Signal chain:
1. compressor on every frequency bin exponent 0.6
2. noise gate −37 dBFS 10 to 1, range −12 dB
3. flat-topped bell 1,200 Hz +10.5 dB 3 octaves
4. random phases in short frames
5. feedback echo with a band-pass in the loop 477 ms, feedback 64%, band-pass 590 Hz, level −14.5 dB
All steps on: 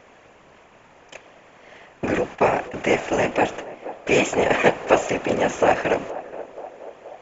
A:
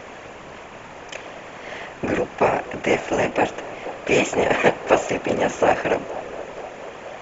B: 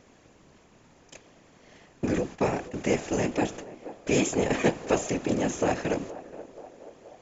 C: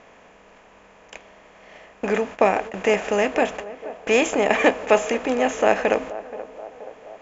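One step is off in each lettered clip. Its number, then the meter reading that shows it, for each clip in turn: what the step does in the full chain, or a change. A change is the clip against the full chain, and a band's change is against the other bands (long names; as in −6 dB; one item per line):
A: 2, change in momentary loudness spread +2 LU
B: 3, 125 Hz band +7.5 dB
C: 4, change in crest factor −1.5 dB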